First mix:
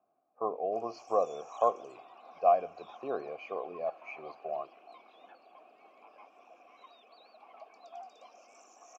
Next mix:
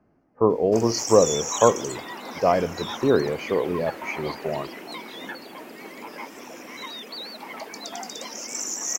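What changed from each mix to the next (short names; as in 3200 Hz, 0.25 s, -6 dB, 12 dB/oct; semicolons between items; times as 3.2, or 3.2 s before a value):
background +6.5 dB; master: remove vowel filter a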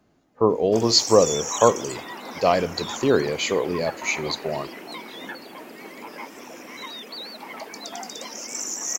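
speech: remove running mean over 12 samples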